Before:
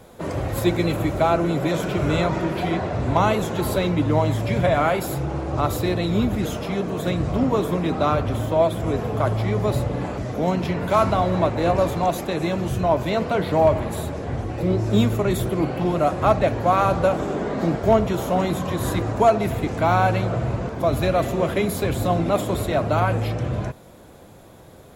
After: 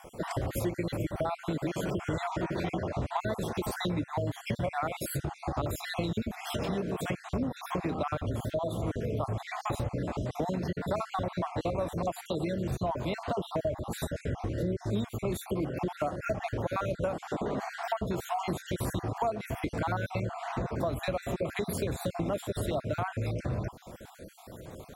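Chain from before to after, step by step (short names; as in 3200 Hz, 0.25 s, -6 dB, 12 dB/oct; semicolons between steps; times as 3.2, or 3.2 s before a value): random spectral dropouts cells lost 43%; dynamic EQ 8800 Hz, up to +4 dB, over -57 dBFS, Q 4; compressor 5:1, threshold -31 dBFS, peak gain reduction 18 dB; gain +1.5 dB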